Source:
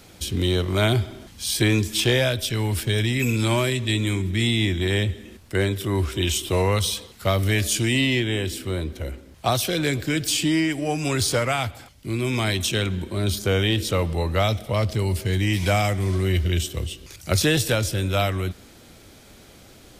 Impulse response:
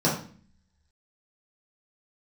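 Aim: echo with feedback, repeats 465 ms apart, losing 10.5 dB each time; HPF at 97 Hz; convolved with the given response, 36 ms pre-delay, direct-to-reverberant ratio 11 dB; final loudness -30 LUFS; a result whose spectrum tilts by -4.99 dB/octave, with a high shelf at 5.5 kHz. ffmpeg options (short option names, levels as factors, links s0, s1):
-filter_complex "[0:a]highpass=97,highshelf=f=5500:g=-4.5,aecho=1:1:465|930|1395:0.299|0.0896|0.0269,asplit=2[s0][s1];[1:a]atrim=start_sample=2205,adelay=36[s2];[s1][s2]afir=irnorm=-1:irlink=0,volume=0.0562[s3];[s0][s3]amix=inputs=2:normalize=0,volume=0.447"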